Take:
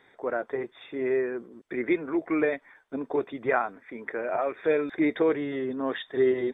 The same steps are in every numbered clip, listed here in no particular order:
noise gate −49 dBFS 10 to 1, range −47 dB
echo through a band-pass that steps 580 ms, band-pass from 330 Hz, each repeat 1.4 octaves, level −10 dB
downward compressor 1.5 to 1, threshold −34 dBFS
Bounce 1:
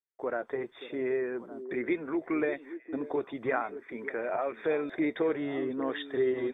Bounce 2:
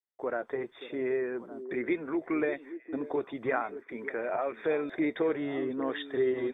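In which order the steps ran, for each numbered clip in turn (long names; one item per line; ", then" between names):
noise gate, then downward compressor, then echo through a band-pass that steps
downward compressor, then noise gate, then echo through a band-pass that steps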